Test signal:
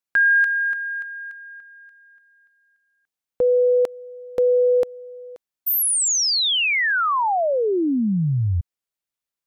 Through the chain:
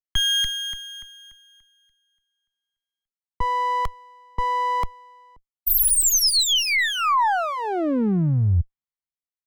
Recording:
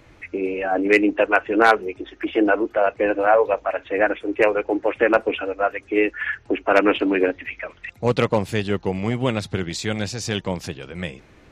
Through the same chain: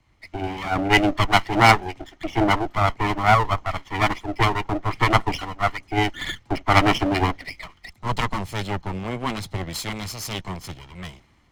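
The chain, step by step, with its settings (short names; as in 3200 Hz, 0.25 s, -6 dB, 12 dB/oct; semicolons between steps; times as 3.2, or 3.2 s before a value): minimum comb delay 0.96 ms; three-band expander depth 40%; gain +1 dB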